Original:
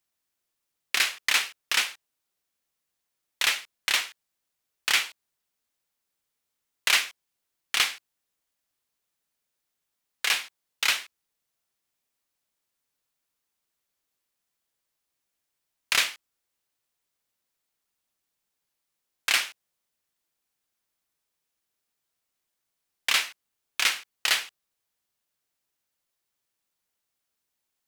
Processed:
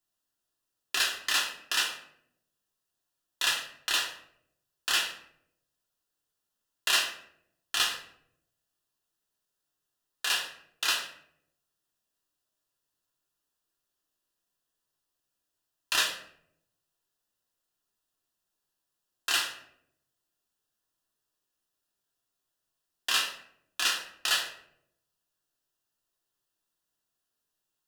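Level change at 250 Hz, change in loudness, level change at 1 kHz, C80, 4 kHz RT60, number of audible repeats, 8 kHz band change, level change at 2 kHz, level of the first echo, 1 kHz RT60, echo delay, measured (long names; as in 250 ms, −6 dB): +0.5 dB, −3.5 dB, −1.0 dB, 10.5 dB, 0.45 s, no echo audible, −2.5 dB, −4.5 dB, no echo audible, 0.60 s, no echo audible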